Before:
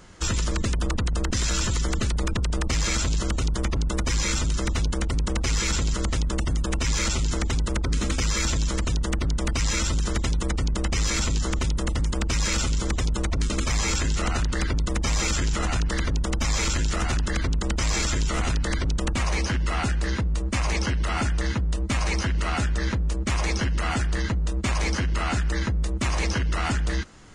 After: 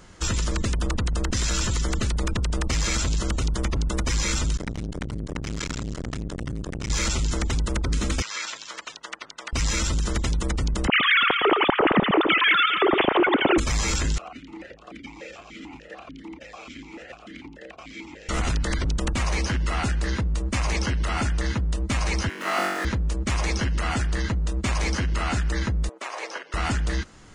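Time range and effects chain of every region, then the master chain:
4.57–6.90 s: treble shelf 4.9 kHz -5.5 dB + transformer saturation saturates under 250 Hz
8.22–9.53 s: high-pass 970 Hz + distance through air 100 m
10.87–13.58 s: formants replaced by sine waves + echo whose repeats swap between lows and highs 112 ms, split 2.1 kHz, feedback 60%, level -10 dB + level flattener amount 50%
14.18–18.29 s: delay 288 ms -5.5 dB + stepped vowel filter 6.8 Hz
22.29–22.85 s: median filter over 9 samples + high-pass 290 Hz 24 dB/octave + flutter echo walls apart 3.6 m, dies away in 1.1 s
25.89–26.54 s: high-pass 470 Hz 24 dB/octave + treble shelf 2.6 kHz -10.5 dB
whole clip: none

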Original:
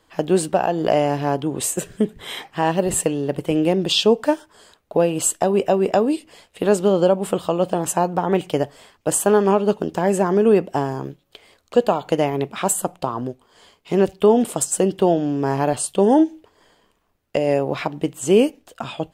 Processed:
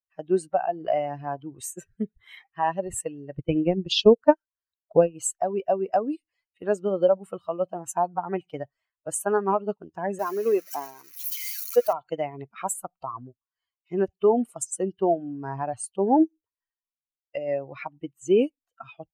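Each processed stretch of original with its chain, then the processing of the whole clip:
3.37–5.15 s: transient shaper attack +4 dB, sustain -8 dB + bass shelf 210 Hz +6.5 dB
10.19–11.93 s: zero-crossing glitches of -13 dBFS + high-pass 260 Hz
whole clip: expander on every frequency bin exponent 2; peaking EQ 750 Hz +6.5 dB 2.3 oct; trim -5.5 dB

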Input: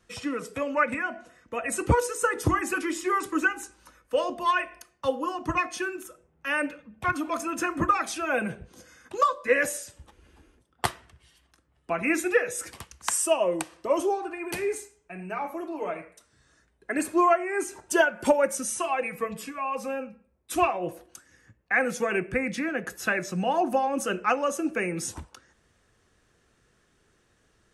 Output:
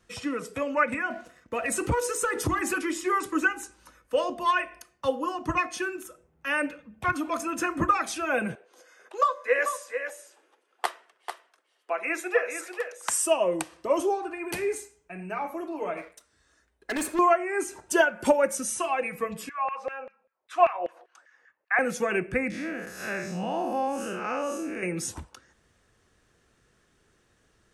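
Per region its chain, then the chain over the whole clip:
1.10–2.77 s: compression 2:1, threshold -29 dBFS + waveshaping leveller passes 1
8.55–13.09 s: high-pass 430 Hz 24 dB/octave + treble shelf 3.2 kHz -7 dB + delay 443 ms -8 dB
15.97–17.19 s: waveshaping leveller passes 1 + peaking EQ 140 Hz -10.5 dB 1.2 oct + overload inside the chain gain 26 dB
19.49–21.79 s: tape spacing loss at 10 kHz 22 dB + LFO high-pass saw down 5.1 Hz 540–1900 Hz
22.50–24.83 s: spectral blur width 154 ms + peaking EQ 4.8 kHz +3 dB 0.37 oct
whole clip: none

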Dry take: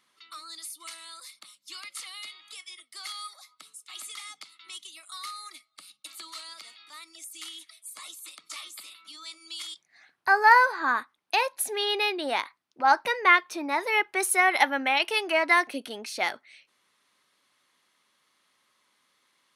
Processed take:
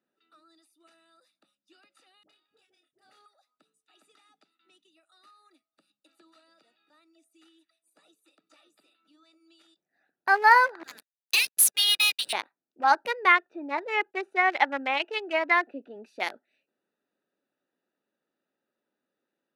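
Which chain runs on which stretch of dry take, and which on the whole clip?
2.23–3.26 s: companding laws mixed up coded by A + doubling 29 ms -5.5 dB + phase dispersion highs, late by 64 ms, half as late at 720 Hz
10.83–12.33 s: inverse Chebyshev high-pass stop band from 820 Hz, stop band 50 dB + differentiator + waveshaping leveller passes 5
13.32–15.96 s: low-pass 3.1 kHz + expander -48 dBFS + bass shelf 130 Hz -8.5 dB
whole clip: local Wiener filter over 41 samples; high-pass 230 Hz 12 dB/octave

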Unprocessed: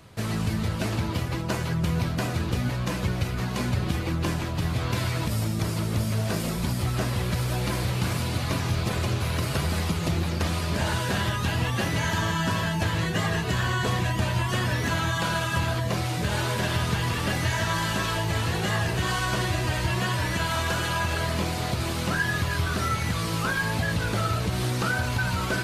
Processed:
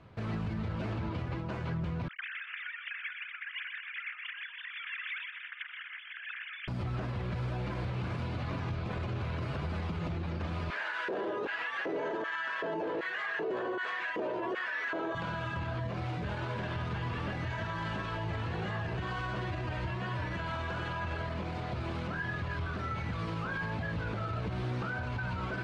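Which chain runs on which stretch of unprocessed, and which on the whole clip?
2.08–6.68 s: formants replaced by sine waves + elliptic high-pass 1.7 kHz, stop band 70 dB + feedback delay 124 ms, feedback 59%, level -8 dB
10.70–15.15 s: LFO high-pass square 1.3 Hz 410–1700 Hz + peaking EQ 400 Hz +15 dB 2.3 oct
whole clip: low-pass 2.4 kHz 12 dB/octave; band-stop 1.9 kHz, Q 25; peak limiter -23 dBFS; trim -4.5 dB

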